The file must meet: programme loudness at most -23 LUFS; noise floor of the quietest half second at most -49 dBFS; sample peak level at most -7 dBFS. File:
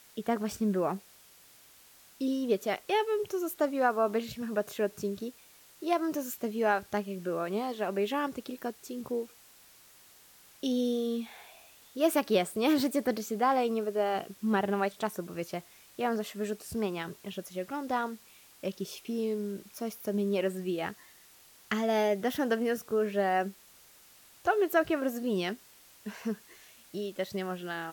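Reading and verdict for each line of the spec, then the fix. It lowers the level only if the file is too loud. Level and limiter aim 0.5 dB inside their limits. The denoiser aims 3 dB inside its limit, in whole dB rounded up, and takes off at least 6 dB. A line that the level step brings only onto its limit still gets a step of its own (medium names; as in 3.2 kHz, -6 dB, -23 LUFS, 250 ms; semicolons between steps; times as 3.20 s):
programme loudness -32.0 LUFS: pass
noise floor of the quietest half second -58 dBFS: pass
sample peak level -13.5 dBFS: pass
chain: none needed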